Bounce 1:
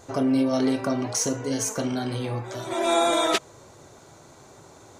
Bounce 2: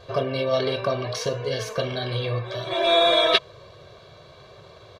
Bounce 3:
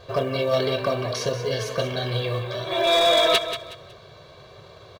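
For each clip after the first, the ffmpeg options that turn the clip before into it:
ffmpeg -i in.wav -af "highshelf=frequency=5300:width_type=q:width=3:gain=-12,bandreject=frequency=1000:width=19,aecho=1:1:1.8:0.88" out.wav
ffmpeg -i in.wav -filter_complex "[0:a]asplit=2[link_01][link_02];[link_02]acrusher=bits=5:mode=log:mix=0:aa=0.000001,volume=-7dB[link_03];[link_01][link_03]amix=inputs=2:normalize=0,volume=11.5dB,asoftclip=hard,volume=-11.5dB,aecho=1:1:184|368|552:0.299|0.0896|0.0269,volume=-2.5dB" out.wav

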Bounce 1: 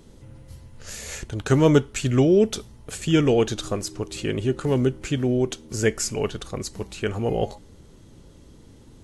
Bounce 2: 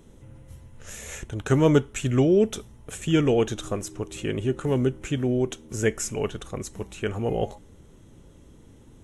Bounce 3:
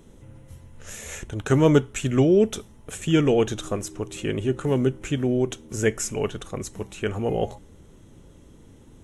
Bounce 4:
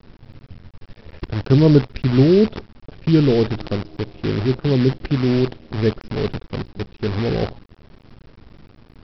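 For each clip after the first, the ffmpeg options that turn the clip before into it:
ffmpeg -i in.wav -af "equalizer=frequency=4600:width_type=o:width=0.3:gain=-14.5,volume=-2dB" out.wav
ffmpeg -i in.wav -af "bandreject=frequency=60:width_type=h:width=6,bandreject=frequency=120:width_type=h:width=6,volume=1.5dB" out.wav
ffmpeg -i in.wav -af "tiltshelf=frequency=690:gain=10,aresample=11025,acrusher=bits=5:dc=4:mix=0:aa=0.000001,aresample=44100,volume=-1.5dB" out.wav

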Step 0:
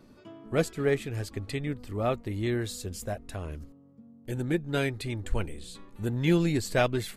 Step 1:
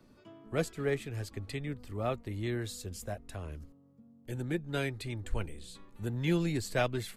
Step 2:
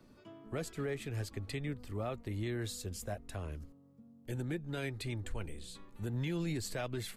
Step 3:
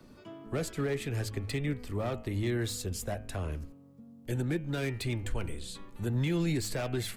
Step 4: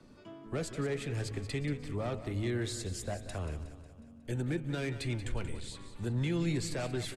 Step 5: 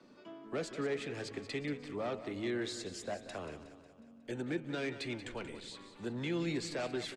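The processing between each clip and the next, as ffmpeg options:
ffmpeg -i in.wav -filter_complex "[0:a]lowshelf=frequency=260:gain=-6,acrossover=split=170|420|5200[link_01][link_02][link_03][link_04];[link_01]acontrast=52[link_05];[link_05][link_02][link_03][link_04]amix=inputs=4:normalize=0,volume=-4.5dB" out.wav
ffmpeg -i in.wav -af "alimiter=level_in=4.5dB:limit=-24dB:level=0:latency=1:release=84,volume=-4.5dB" out.wav
ffmpeg -i in.wav -filter_complex "[0:a]bandreject=frequency=106.4:width_type=h:width=4,bandreject=frequency=212.8:width_type=h:width=4,bandreject=frequency=319.2:width_type=h:width=4,bandreject=frequency=425.6:width_type=h:width=4,bandreject=frequency=532:width_type=h:width=4,bandreject=frequency=638.4:width_type=h:width=4,bandreject=frequency=744.8:width_type=h:width=4,bandreject=frequency=851.2:width_type=h:width=4,bandreject=frequency=957.6:width_type=h:width=4,bandreject=frequency=1064:width_type=h:width=4,bandreject=frequency=1170.4:width_type=h:width=4,bandreject=frequency=1276.8:width_type=h:width=4,bandreject=frequency=1383.2:width_type=h:width=4,bandreject=frequency=1489.6:width_type=h:width=4,bandreject=frequency=1596:width_type=h:width=4,bandreject=frequency=1702.4:width_type=h:width=4,bandreject=frequency=1808.8:width_type=h:width=4,bandreject=frequency=1915.2:width_type=h:width=4,bandreject=frequency=2021.6:width_type=h:width=4,bandreject=frequency=2128:width_type=h:width=4,bandreject=frequency=2234.4:width_type=h:width=4,bandreject=frequency=2340.8:width_type=h:width=4,bandreject=frequency=2447.2:width_type=h:width=4,bandreject=frequency=2553.6:width_type=h:width=4,bandreject=frequency=2660:width_type=h:width=4,bandreject=frequency=2766.4:width_type=h:width=4,bandreject=frequency=2872.8:width_type=h:width=4,bandreject=frequency=2979.2:width_type=h:width=4,bandreject=frequency=3085.6:width_type=h:width=4,bandreject=frequency=3192:width_type=h:width=4,acrossover=split=400[link_01][link_02];[link_02]asoftclip=type=hard:threshold=-39dB[link_03];[link_01][link_03]amix=inputs=2:normalize=0,volume=6.5dB" out.wav
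ffmpeg -i in.wav -filter_complex "[0:a]lowpass=frequency=10000:width=0.5412,lowpass=frequency=10000:width=1.3066,asplit=2[link_01][link_02];[link_02]aecho=0:1:182|364|546|728|910|1092:0.237|0.13|0.0717|0.0395|0.0217|0.0119[link_03];[link_01][link_03]amix=inputs=2:normalize=0,volume=-2.5dB" out.wav
ffmpeg -i in.wav -filter_complex "[0:a]acrossover=split=190 7000:gain=0.0891 1 0.158[link_01][link_02][link_03];[link_01][link_02][link_03]amix=inputs=3:normalize=0" out.wav

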